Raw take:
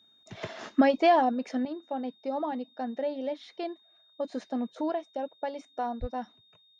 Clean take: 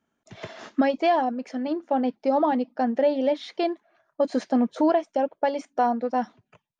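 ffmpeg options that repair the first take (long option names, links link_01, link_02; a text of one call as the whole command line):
ffmpeg -i in.wav -filter_complex "[0:a]bandreject=frequency=3700:width=30,asplit=3[link_01][link_02][link_03];[link_01]afade=type=out:start_time=6:duration=0.02[link_04];[link_02]highpass=frequency=140:width=0.5412,highpass=frequency=140:width=1.3066,afade=type=in:start_time=6:duration=0.02,afade=type=out:start_time=6.12:duration=0.02[link_05];[link_03]afade=type=in:start_time=6.12:duration=0.02[link_06];[link_04][link_05][link_06]amix=inputs=3:normalize=0,asetnsamples=nb_out_samples=441:pad=0,asendcmd='1.65 volume volume 10dB',volume=0dB" out.wav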